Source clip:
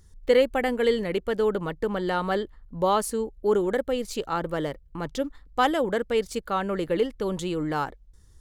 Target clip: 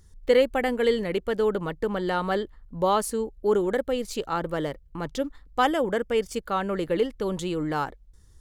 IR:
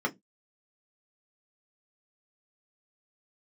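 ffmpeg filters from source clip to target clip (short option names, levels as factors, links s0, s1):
-filter_complex "[0:a]asettb=1/sr,asplit=3[s0][s1][s2];[s0]atrim=end=5.624[s3];[s1]atrim=start=5.62:end=6.36,asetpts=PTS-STARTPTS,afade=t=in:d=0.004:c=qsin,afade=t=out:st=0.736:d=0.004:c=qsin,bandreject=f=4000:w=5.1[s4];[s2]atrim=start=6.356[s5];[s3][s4]acrossfade=d=0.004:c1=hsin:c2=qsin[s6];[s6][s5]acrossfade=d=0.004:c1=qsin:c2=hsin"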